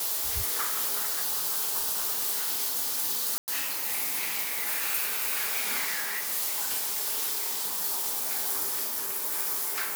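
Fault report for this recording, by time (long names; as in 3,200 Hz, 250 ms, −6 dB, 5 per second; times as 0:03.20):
0:03.38–0:03.48: drop-out 99 ms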